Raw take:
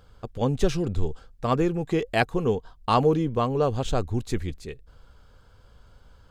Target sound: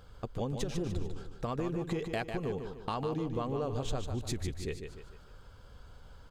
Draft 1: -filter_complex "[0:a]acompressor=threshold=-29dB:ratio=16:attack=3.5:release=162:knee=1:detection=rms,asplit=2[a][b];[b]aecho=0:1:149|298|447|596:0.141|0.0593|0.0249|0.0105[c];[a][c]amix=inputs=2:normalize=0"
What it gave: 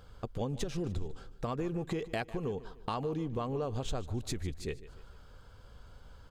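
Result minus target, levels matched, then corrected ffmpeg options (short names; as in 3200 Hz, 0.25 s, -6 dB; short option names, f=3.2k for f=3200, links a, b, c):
echo-to-direct -10 dB
-filter_complex "[0:a]acompressor=threshold=-29dB:ratio=16:attack=3.5:release=162:knee=1:detection=rms,asplit=2[a][b];[b]aecho=0:1:149|298|447|596|745:0.447|0.188|0.0788|0.0331|0.0139[c];[a][c]amix=inputs=2:normalize=0"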